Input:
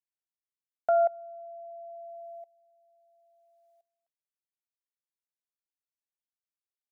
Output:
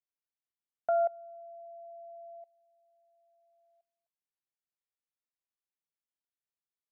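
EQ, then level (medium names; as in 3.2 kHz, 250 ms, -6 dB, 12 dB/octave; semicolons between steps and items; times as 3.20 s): distance through air 190 m; -3.5 dB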